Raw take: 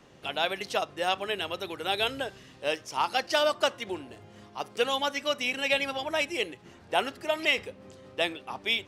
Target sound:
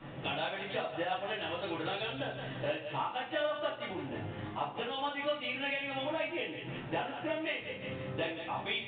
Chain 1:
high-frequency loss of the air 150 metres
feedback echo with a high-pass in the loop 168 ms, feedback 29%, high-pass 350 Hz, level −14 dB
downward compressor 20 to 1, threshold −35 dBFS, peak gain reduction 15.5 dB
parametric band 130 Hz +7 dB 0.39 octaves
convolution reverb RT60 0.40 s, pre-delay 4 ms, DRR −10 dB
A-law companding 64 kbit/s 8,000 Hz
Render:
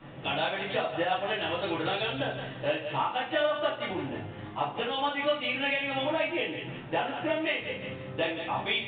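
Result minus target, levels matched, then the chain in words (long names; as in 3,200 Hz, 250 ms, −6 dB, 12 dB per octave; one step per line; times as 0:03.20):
downward compressor: peak gain reduction −6 dB
high-frequency loss of the air 150 metres
feedback echo with a high-pass in the loop 168 ms, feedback 29%, high-pass 350 Hz, level −14 dB
downward compressor 20 to 1, threshold −41.5 dBFS, peak gain reduction 21.5 dB
parametric band 130 Hz +7 dB 0.39 octaves
convolution reverb RT60 0.40 s, pre-delay 4 ms, DRR −10 dB
A-law companding 64 kbit/s 8,000 Hz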